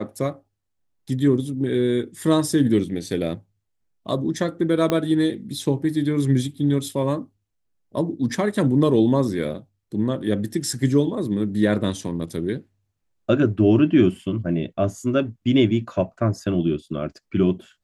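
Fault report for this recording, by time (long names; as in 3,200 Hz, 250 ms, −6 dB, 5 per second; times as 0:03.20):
0:04.90: click −8 dBFS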